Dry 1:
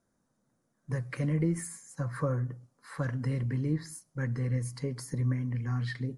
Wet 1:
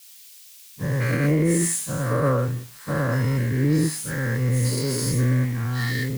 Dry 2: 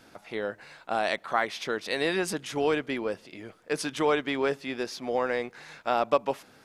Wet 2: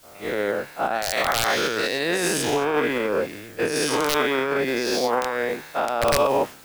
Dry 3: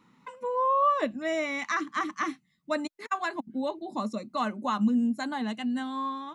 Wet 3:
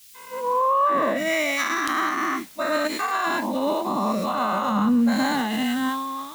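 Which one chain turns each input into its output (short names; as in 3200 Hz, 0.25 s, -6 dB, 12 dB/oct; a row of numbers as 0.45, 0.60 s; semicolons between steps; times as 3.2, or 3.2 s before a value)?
spectral dilation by 0.24 s; in parallel at -6 dB: requantised 6-bit, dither triangular; on the sum: wrapped overs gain 4.5 dB; limiter -14.5 dBFS; three-band expander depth 100%; match loudness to -23 LUFS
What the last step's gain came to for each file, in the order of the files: +2.0, +2.0, 0.0 dB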